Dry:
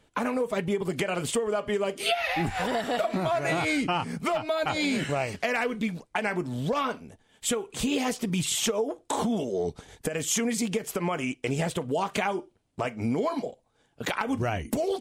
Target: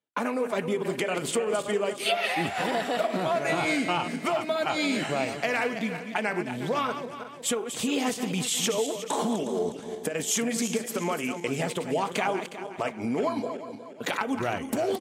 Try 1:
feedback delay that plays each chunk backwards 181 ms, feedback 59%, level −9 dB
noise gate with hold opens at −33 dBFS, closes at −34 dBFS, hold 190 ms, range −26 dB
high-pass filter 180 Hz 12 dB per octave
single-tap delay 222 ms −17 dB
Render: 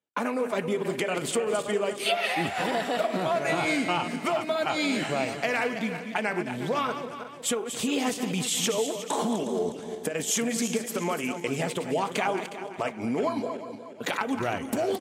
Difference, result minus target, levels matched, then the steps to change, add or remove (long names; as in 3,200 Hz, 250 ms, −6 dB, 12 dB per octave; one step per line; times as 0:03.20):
echo-to-direct +10 dB
change: single-tap delay 222 ms −27 dB